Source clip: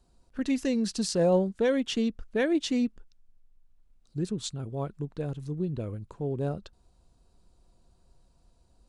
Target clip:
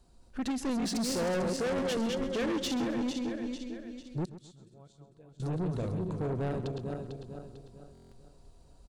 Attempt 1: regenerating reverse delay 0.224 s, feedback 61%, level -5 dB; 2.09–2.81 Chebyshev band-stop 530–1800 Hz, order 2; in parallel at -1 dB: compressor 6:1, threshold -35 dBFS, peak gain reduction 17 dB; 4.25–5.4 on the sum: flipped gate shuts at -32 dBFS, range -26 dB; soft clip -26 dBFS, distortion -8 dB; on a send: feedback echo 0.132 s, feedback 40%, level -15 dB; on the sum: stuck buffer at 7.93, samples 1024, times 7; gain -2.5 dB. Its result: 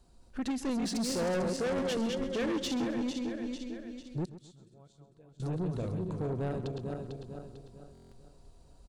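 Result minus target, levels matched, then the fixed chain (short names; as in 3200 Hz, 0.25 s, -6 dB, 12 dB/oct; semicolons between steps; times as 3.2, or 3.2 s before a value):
compressor: peak gain reduction +8.5 dB
regenerating reverse delay 0.224 s, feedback 61%, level -5 dB; 2.09–2.81 Chebyshev band-stop 530–1800 Hz, order 2; in parallel at -1 dB: compressor 6:1, threshold -25 dBFS, peak gain reduction 8.5 dB; 4.25–5.4 on the sum: flipped gate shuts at -32 dBFS, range -26 dB; soft clip -26 dBFS, distortion -7 dB; on a send: feedback echo 0.132 s, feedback 40%, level -15 dB; on the sum: stuck buffer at 7.93, samples 1024, times 7; gain -2.5 dB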